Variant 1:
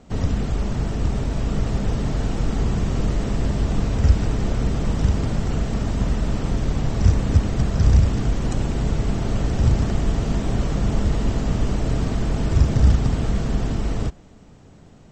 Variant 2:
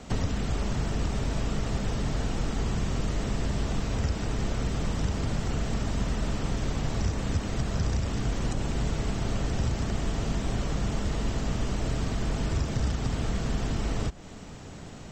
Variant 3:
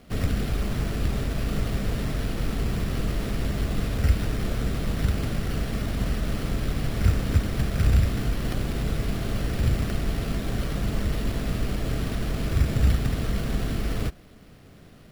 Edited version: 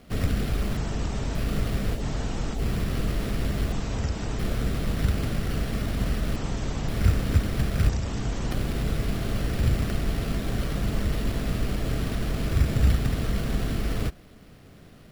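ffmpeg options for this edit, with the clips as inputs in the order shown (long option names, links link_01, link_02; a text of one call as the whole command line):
ffmpeg -i take0.wav -i take1.wav -i take2.wav -filter_complex "[1:a]asplit=5[link_01][link_02][link_03][link_04][link_05];[2:a]asplit=6[link_06][link_07][link_08][link_09][link_10][link_11];[link_06]atrim=end=0.772[link_12];[link_01]atrim=start=0.768:end=1.352[link_13];[link_07]atrim=start=1.348:end=2.03[link_14];[link_02]atrim=start=1.93:end=2.63[link_15];[link_08]atrim=start=2.53:end=3.722[link_16];[link_03]atrim=start=3.718:end=4.392[link_17];[link_09]atrim=start=4.388:end=6.362[link_18];[link_04]atrim=start=6.358:end=6.882[link_19];[link_10]atrim=start=6.878:end=7.892[link_20];[link_05]atrim=start=7.888:end=8.512[link_21];[link_11]atrim=start=8.508[link_22];[link_12][link_13]acrossfade=duration=0.004:curve1=hsin:curve2=hsin[link_23];[link_23][link_14]acrossfade=duration=0.004:curve1=hsin:curve2=hsin[link_24];[link_24][link_15]acrossfade=duration=0.1:curve1=tri:curve2=tri[link_25];[link_25][link_16]acrossfade=duration=0.1:curve1=tri:curve2=tri[link_26];[link_26][link_17]acrossfade=duration=0.004:curve1=hsin:curve2=hsin[link_27];[link_27][link_18]acrossfade=duration=0.004:curve1=hsin:curve2=hsin[link_28];[link_28][link_19]acrossfade=duration=0.004:curve1=hsin:curve2=hsin[link_29];[link_29][link_20]acrossfade=duration=0.004:curve1=hsin:curve2=hsin[link_30];[link_30][link_21]acrossfade=duration=0.004:curve1=hsin:curve2=hsin[link_31];[link_31][link_22]acrossfade=duration=0.004:curve1=hsin:curve2=hsin" out.wav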